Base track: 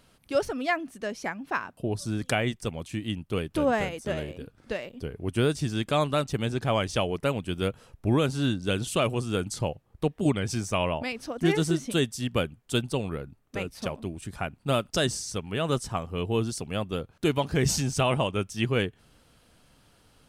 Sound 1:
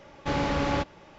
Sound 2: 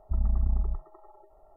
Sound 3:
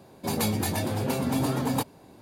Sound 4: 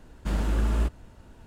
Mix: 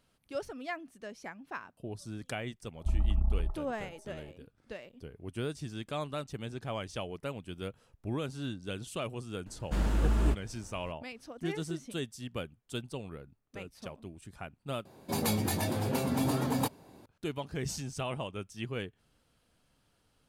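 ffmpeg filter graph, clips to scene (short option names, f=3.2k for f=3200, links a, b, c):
-filter_complex "[0:a]volume=-11.5dB,asplit=2[a][b];[a]atrim=end=14.854[c];[3:a]atrim=end=2.21,asetpts=PTS-STARTPTS,volume=-3.5dB[d];[b]atrim=start=17.056[e];[2:a]atrim=end=1.56,asetpts=PTS-STARTPTS,volume=-2.5dB,afade=t=in:d=0.004:c=hsin,afade=t=out:st=1.556:d=0.004:c=hsin,adelay=2750[f];[4:a]atrim=end=1.46,asetpts=PTS-STARTPTS,volume=-2.5dB,afade=t=in:d=0.004:c=hsin,afade=t=out:st=1.456:d=0.004:c=hsin,adelay=417186S[g];[c][d]acrossfade=d=0.004:c1=hsin:c2=hsin[h];[h][e]acrossfade=d=0.004:c1=hsin:c2=hsin[i];[i][f][g]amix=inputs=3:normalize=0"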